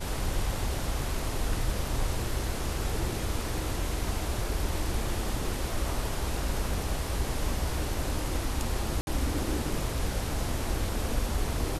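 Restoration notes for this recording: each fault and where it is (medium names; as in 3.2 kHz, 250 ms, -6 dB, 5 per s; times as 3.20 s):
9.01–9.07 s: dropout 61 ms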